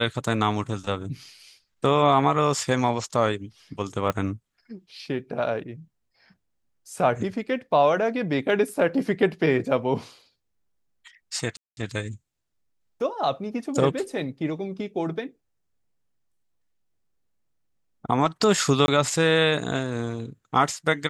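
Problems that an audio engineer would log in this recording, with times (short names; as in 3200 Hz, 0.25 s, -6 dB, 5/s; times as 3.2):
4.1 pop -11 dBFS
11.57–11.77 gap 0.201 s
18.86–18.88 gap 21 ms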